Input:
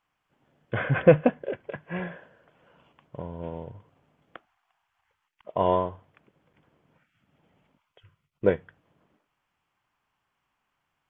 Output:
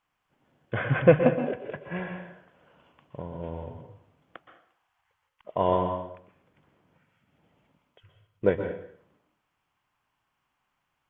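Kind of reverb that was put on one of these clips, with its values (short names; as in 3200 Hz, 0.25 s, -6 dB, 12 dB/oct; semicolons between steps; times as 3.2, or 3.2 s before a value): plate-style reverb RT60 0.59 s, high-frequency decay 0.9×, pre-delay 0.11 s, DRR 5.5 dB; gain -1 dB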